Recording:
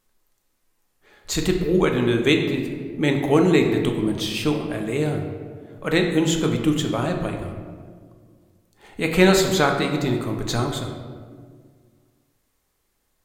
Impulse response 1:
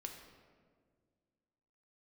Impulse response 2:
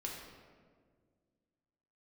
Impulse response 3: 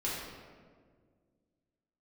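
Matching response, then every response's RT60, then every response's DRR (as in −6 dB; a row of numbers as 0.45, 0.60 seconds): 1; 1.8, 1.8, 1.8 seconds; 2.5, −2.0, −7.5 decibels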